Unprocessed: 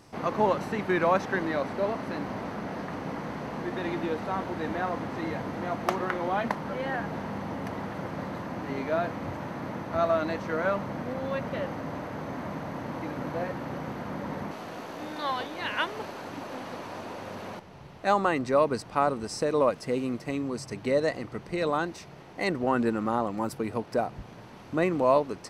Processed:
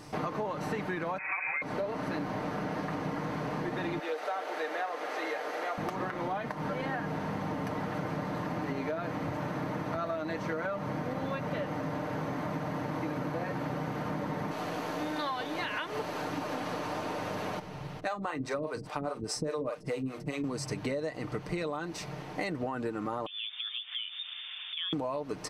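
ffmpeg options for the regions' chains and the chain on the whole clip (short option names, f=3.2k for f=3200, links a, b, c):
-filter_complex "[0:a]asettb=1/sr,asplit=3[a][b][c];[a]atrim=end=1.184[d];[b]atrim=start=1.18:end=1.62,asetpts=PTS-STARTPTS,afade=t=in:d=0.004:c=qsin,afade=t=out:st=0.436:d=0.004:c=qsin,aecho=1:1:5.1:0.68,atrim=end_sample=19404,lowpass=f=2.3k:t=q:w=0.5098,lowpass=f=2.3k:t=q:w=0.6013,lowpass=f=2.3k:t=q:w=0.9,lowpass=f=2.3k:t=q:w=2.563,afreqshift=-2700[e];[c]atrim=start=1.616[f];[d][e]acrossfade=d=0.004:c1=hsin:c2=qsin[g];[g][f]acrossfade=d=0.004:c1=qsin:c2=hsin,asettb=1/sr,asplit=3[h][i][j];[h]atrim=end=3.994[k];[i]atrim=start=3.99:end=5.78,asetpts=PTS-STARTPTS,afade=t=in:d=0.004:c=qsin,afade=t=out:st=1.786:d=0.004:c=qsin,highpass=f=460:w=0.5412,highpass=f=460:w=1.3066,equalizer=f=970:t=o:w=0.27:g=-8.5[l];[j]atrim=start=5.776[m];[k][l]acrossfade=d=0.004:c1=hsin:c2=qsin[n];[n][m]acrossfade=d=0.004:c1=qsin:c2=hsin,asettb=1/sr,asplit=3[o][p][q];[o]atrim=end=18.004[r];[p]atrim=start=18:end=20.44,asetpts=PTS-STARTPTS,afade=t=in:d=0.004:c=qsin,afade=t=out:st=2.436:d=0.004:c=qsin,asplit=2[s][t];[t]adelay=45,volume=-10.5dB[u];[s][u]amix=inputs=2:normalize=0,atrim=end_sample=107604,acrossover=split=410[v][w];[v]aeval=exprs='val(0)*(1-1/2+1/2*cos(2*PI*4.9*n/s))':c=same[x];[w]aeval=exprs='val(0)*(1-1/2-1/2*cos(2*PI*4.9*n/s))':c=same[y];[x][y]amix=inputs=2:normalize=0[z];[q]atrim=start=20.436[aa];[r][z]acrossfade=d=0.004:c1=hsin:c2=qsin[ab];[ab][aa]acrossfade=d=0.004:c1=qsin:c2=hsin,asettb=1/sr,asplit=3[ac][ad][ae];[ac]atrim=end=23.264[af];[ad]atrim=start=23.26:end=24.93,asetpts=PTS-STARTPTS,afade=t=in:d=0.004:c=qsin,afade=t=out:st=1.666:d=0.004:c=qsin,lowpass=f=3.1k:t=q:w=0.5098,lowpass=f=3.1k:t=q:w=0.6013,lowpass=f=3.1k:t=q:w=0.9,lowpass=f=3.1k:t=q:w=2.563,afreqshift=-3700,highpass=1.1k,acompressor=threshold=-43dB:ratio=3:attack=3.2:release=140:knee=1:detection=peak[ag];[ae]atrim=start=24.926[ah];[af][ag]acrossfade=d=0.004:c1=hsin:c2=qsin[ai];[ai][ah]acrossfade=d=0.004:c1=qsin:c2=hsin,aecho=1:1:6.6:0.49,alimiter=limit=-19.5dB:level=0:latency=1:release=162,acompressor=threshold=-36dB:ratio=6,volume=5dB"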